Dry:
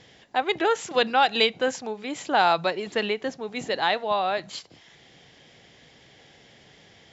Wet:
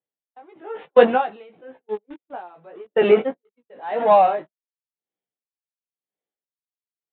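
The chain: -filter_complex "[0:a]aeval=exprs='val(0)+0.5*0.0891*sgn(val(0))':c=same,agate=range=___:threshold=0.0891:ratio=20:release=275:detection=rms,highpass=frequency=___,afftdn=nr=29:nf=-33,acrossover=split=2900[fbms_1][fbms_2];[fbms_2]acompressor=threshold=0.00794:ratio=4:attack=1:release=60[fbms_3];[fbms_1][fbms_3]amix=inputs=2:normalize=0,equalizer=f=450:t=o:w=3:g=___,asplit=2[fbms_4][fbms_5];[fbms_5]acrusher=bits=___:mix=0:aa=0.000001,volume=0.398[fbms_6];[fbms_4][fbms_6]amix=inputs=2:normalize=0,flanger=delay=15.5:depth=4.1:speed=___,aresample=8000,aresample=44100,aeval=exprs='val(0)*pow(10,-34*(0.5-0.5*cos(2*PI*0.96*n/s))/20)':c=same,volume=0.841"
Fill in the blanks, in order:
0.01, 130, 11, 4, 1.7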